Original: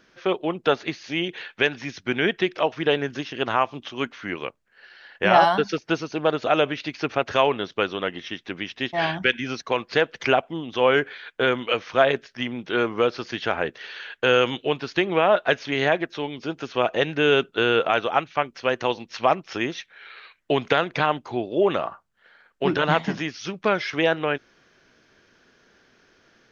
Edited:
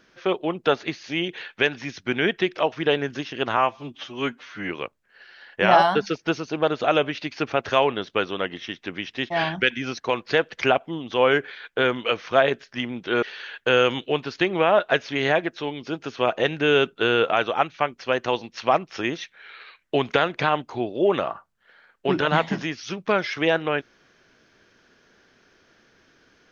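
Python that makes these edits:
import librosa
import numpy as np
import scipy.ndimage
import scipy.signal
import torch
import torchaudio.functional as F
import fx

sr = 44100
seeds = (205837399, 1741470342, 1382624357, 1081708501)

y = fx.edit(x, sr, fx.stretch_span(start_s=3.57, length_s=0.75, factor=1.5),
    fx.cut(start_s=12.85, length_s=0.94), tone=tone)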